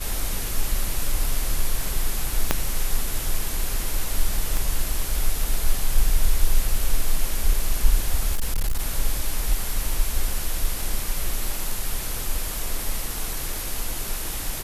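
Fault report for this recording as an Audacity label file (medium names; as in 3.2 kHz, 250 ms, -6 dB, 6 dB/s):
2.510000	2.510000	pop -3 dBFS
4.570000	4.570000	pop
8.350000	8.800000	clipped -18 dBFS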